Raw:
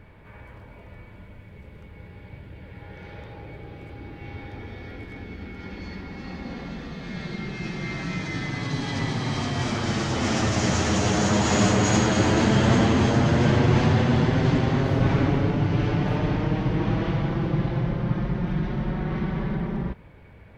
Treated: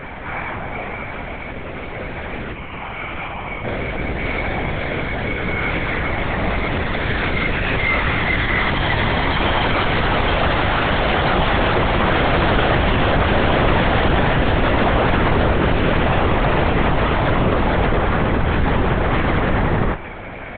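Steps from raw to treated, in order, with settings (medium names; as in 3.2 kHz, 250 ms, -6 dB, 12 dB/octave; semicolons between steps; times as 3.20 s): overdrive pedal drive 34 dB, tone 2.3 kHz, clips at -8 dBFS; 2.52–3.64 s: static phaser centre 2.6 kHz, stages 8; doubling 30 ms -4.5 dB; LPC vocoder at 8 kHz whisper; trim -2 dB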